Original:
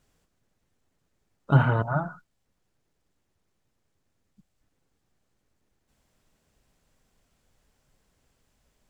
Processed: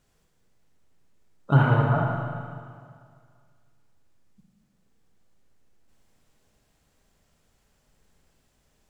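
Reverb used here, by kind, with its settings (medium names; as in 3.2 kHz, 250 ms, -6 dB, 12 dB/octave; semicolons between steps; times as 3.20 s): Schroeder reverb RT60 2.1 s, DRR 0.5 dB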